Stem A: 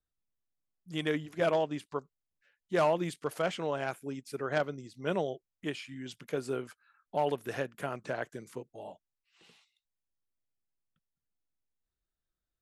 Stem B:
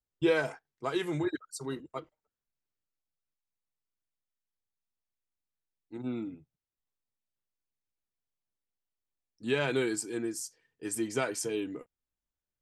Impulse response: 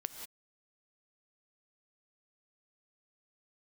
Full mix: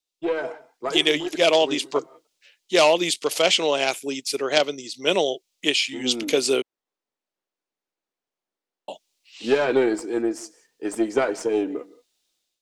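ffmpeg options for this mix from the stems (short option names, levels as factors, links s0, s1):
-filter_complex "[0:a]aexciter=amount=10.1:drive=3.9:freq=2300,volume=0.75,asplit=3[s0][s1][s2];[s0]atrim=end=6.62,asetpts=PTS-STARTPTS,afade=t=out:st=6.616:d=0.004:c=hsin[s3];[s1]atrim=start=6.62:end=8.88,asetpts=PTS-STARTPTS,volume=0[s4];[s2]atrim=start=8.88,asetpts=PTS-STARTPTS,afade=t=in:d=0.004:c=hsin[s5];[s3][s4][s5]concat=n=3:v=0:a=1,asplit=2[s6][s7];[1:a]aeval=exprs='(tanh(11.2*val(0)+0.7)-tanh(0.7))/11.2':c=same,adynamicequalizer=threshold=0.00398:dfrequency=2000:dqfactor=0.7:tfrequency=2000:tqfactor=0.7:attack=5:release=100:ratio=0.375:range=2.5:mode=cutabove:tftype=highshelf,volume=0.841,asplit=2[s8][s9];[s9]volume=0.299[s10];[s7]apad=whole_len=556128[s11];[s8][s11]sidechaincompress=threshold=0.0355:ratio=8:attack=26:release=889[s12];[2:a]atrim=start_sample=2205[s13];[s10][s13]afir=irnorm=-1:irlink=0[s14];[s6][s12][s14]amix=inputs=3:normalize=0,tiltshelf=f=970:g=5,dynaudnorm=f=190:g=5:m=5.01,acrossover=split=270 7400:gain=0.0631 1 0.224[s15][s16][s17];[s15][s16][s17]amix=inputs=3:normalize=0"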